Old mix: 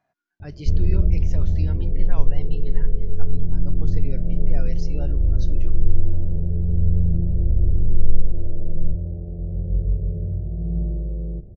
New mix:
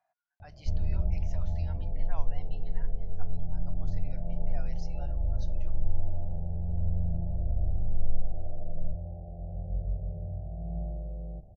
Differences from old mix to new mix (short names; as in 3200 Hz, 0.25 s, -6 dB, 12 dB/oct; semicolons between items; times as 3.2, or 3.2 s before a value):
speech -9.0 dB; master: add resonant low shelf 540 Hz -10.5 dB, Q 3